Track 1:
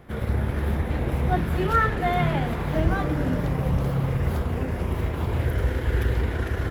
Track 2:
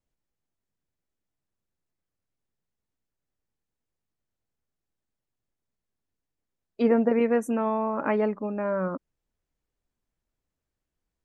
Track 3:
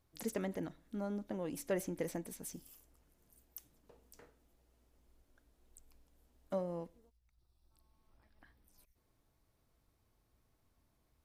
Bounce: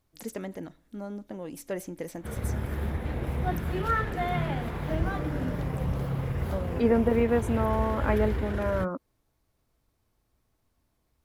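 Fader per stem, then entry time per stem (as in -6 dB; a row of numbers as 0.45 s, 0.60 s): -6.0 dB, -1.5 dB, +2.0 dB; 2.15 s, 0.00 s, 0.00 s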